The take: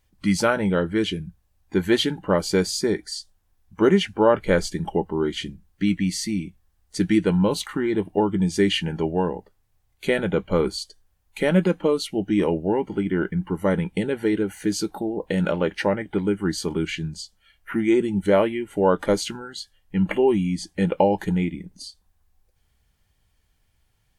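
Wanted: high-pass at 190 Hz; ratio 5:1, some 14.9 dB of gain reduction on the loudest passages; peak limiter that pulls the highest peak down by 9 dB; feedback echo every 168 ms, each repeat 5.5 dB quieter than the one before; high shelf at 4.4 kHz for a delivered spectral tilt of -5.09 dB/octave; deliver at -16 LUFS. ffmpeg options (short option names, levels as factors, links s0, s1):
-af "highpass=190,highshelf=f=4400:g=-7.5,acompressor=threshold=0.0282:ratio=5,alimiter=level_in=1.06:limit=0.0631:level=0:latency=1,volume=0.944,aecho=1:1:168|336|504|672|840|1008|1176:0.531|0.281|0.149|0.079|0.0419|0.0222|0.0118,volume=9.44"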